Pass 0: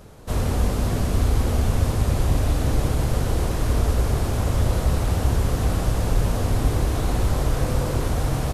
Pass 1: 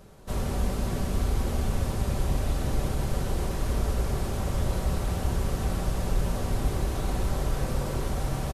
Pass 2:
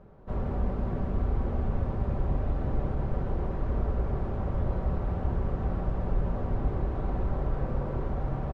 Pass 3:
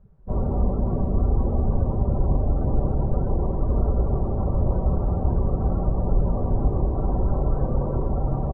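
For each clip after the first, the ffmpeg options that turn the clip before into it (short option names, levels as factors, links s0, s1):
-af "aecho=1:1:5.2:0.33,volume=0.501"
-af "lowpass=1300,volume=0.841"
-af "afftdn=nr=21:nf=-39,volume=2.24"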